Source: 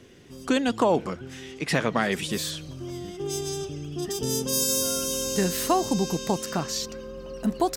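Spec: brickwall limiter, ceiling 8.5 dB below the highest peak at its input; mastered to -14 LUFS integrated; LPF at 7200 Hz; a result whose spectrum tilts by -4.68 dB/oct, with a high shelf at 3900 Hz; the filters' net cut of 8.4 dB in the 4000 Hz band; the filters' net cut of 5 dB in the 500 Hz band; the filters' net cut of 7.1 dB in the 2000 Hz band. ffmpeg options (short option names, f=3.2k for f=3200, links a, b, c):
-af "lowpass=7.2k,equalizer=f=500:t=o:g=-6,equalizer=f=2k:t=o:g=-6.5,highshelf=f=3.9k:g=-4.5,equalizer=f=4k:t=o:g=-5.5,volume=19.5dB,alimiter=limit=-1.5dB:level=0:latency=1"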